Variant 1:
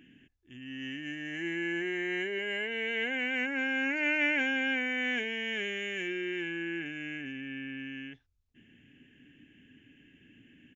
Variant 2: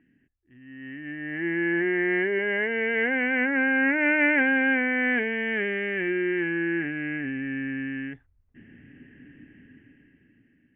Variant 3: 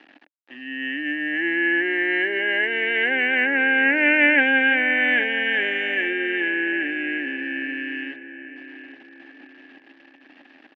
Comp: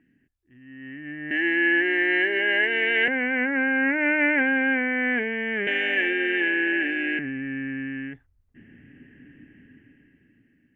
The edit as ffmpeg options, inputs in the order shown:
-filter_complex "[2:a]asplit=2[a][b];[1:a]asplit=3[c][d][e];[c]atrim=end=1.312[f];[a]atrim=start=1.308:end=3.082[g];[d]atrim=start=3.078:end=5.672[h];[b]atrim=start=5.668:end=7.192[i];[e]atrim=start=7.188[j];[f][g]acrossfade=d=0.004:c1=hsin:c2=hsin[k];[k][h]acrossfade=d=0.004:c1=hsin:c2=hsin[l];[l][i]acrossfade=d=0.004:c1=hsin:c2=hsin[m];[m][j]acrossfade=d=0.004:c1=hsin:c2=hsin"

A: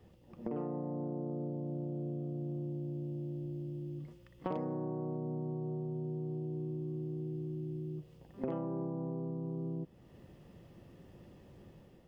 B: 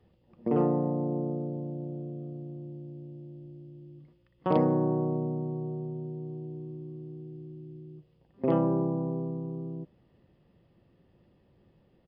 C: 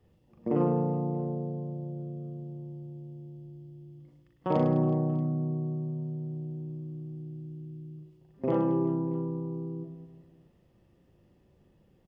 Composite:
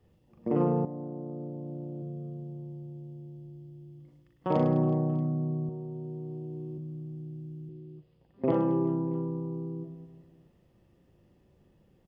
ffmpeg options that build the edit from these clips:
-filter_complex "[0:a]asplit=2[a][b];[2:a]asplit=4[c][d][e][f];[c]atrim=end=0.852[g];[a]atrim=start=0.848:end=2.022[h];[d]atrim=start=2.018:end=5.692[i];[b]atrim=start=5.688:end=6.782[j];[e]atrim=start=6.778:end=7.692[k];[1:a]atrim=start=7.688:end=8.512[l];[f]atrim=start=8.508[m];[g][h]acrossfade=d=0.004:c1=hsin:c2=hsin[n];[n][i]acrossfade=d=0.004:c1=hsin:c2=hsin[o];[o][j]acrossfade=d=0.004:c1=hsin:c2=hsin[p];[p][k]acrossfade=d=0.004:c1=hsin:c2=hsin[q];[q][l]acrossfade=d=0.004:c1=hsin:c2=hsin[r];[r][m]acrossfade=d=0.004:c1=hsin:c2=hsin"

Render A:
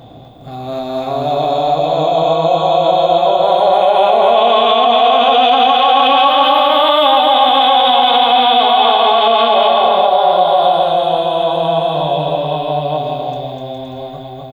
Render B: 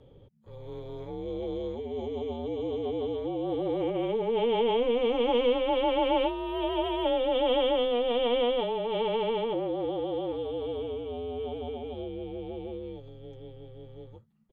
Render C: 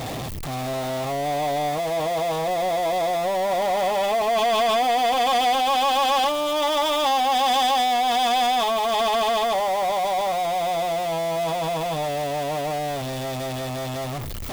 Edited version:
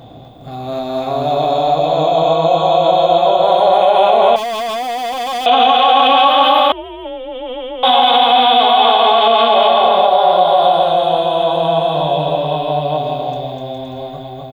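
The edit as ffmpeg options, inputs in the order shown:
-filter_complex "[0:a]asplit=3[a][b][c];[a]atrim=end=4.362[d];[2:a]atrim=start=4.358:end=5.462[e];[b]atrim=start=5.458:end=6.722[f];[1:a]atrim=start=6.718:end=7.832[g];[c]atrim=start=7.828[h];[d][e]acrossfade=d=0.004:c1=hsin:c2=hsin[i];[i][f]acrossfade=d=0.004:c1=hsin:c2=hsin[j];[j][g]acrossfade=d=0.004:c1=hsin:c2=hsin[k];[k][h]acrossfade=d=0.004:c1=hsin:c2=hsin"

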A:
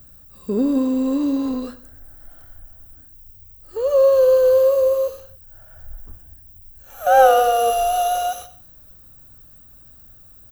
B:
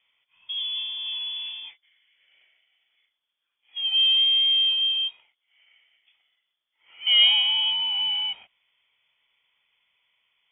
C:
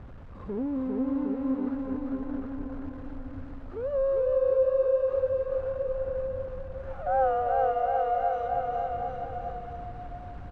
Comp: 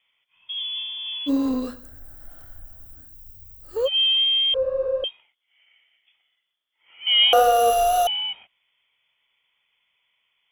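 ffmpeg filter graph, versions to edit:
-filter_complex "[0:a]asplit=2[a][b];[1:a]asplit=4[c][d][e][f];[c]atrim=end=1.3[g];[a]atrim=start=1.26:end=3.89[h];[d]atrim=start=3.85:end=4.542[i];[2:a]atrim=start=4.538:end=5.042[j];[e]atrim=start=5.038:end=7.332[k];[b]atrim=start=7.328:end=8.072[l];[f]atrim=start=8.068[m];[g][h]acrossfade=d=0.04:c1=tri:c2=tri[n];[n][i]acrossfade=d=0.04:c1=tri:c2=tri[o];[o][j]acrossfade=d=0.004:c1=hsin:c2=hsin[p];[p][k]acrossfade=d=0.004:c1=hsin:c2=hsin[q];[q][l]acrossfade=d=0.004:c1=hsin:c2=hsin[r];[r][m]acrossfade=d=0.004:c1=hsin:c2=hsin"

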